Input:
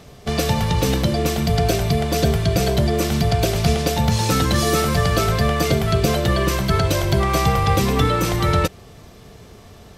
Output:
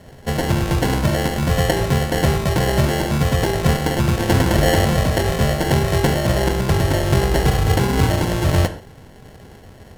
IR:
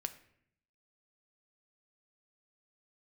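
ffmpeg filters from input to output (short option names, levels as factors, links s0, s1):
-filter_complex "[0:a]asettb=1/sr,asplit=3[s0][s1][s2];[s0]atrim=end=4.294[s3];[s1]atrim=start=4.29:end=4.99,asetpts=PTS-STARTPTS,afade=t=in:d=0.004:c=qsin,afade=t=out:st=0.696:d=0.004:c=qsin,equalizer=f=1200:w=0.66:g=5.5[s4];[s2]atrim=start=4.986[s5];[s3][s4]acrossfade=d=0.004:c1=hsin:c2=qsin[s6];[s6][s5]acrossfade=d=0.004:c1=qsin:c2=hsin,acrusher=samples=36:mix=1:aa=0.000001[s7];[1:a]atrim=start_sample=2205,atrim=end_sample=3969,asetrate=27783,aresample=44100[s8];[s7][s8]afir=irnorm=-1:irlink=0"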